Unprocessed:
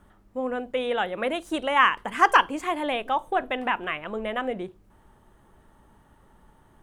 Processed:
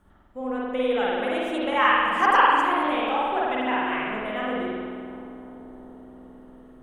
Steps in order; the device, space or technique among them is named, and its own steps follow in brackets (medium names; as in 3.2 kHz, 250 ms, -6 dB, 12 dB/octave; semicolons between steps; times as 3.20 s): dub delay into a spring reverb (filtered feedback delay 345 ms, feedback 82%, low-pass 1.2 kHz, level -14.5 dB; spring tank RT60 1.8 s, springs 47 ms, chirp 25 ms, DRR -6 dB); trim -5.5 dB